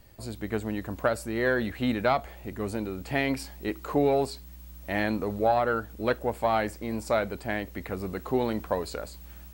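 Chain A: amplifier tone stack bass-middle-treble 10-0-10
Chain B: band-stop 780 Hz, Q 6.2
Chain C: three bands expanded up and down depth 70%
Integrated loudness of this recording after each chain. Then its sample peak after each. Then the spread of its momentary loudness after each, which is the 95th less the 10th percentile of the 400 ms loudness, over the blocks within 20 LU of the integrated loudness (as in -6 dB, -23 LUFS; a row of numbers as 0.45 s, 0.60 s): -40.0 LUFS, -29.5 LUFS, -28.0 LUFS; -19.5 dBFS, -12.0 dBFS, -9.0 dBFS; 10 LU, 11 LU, 15 LU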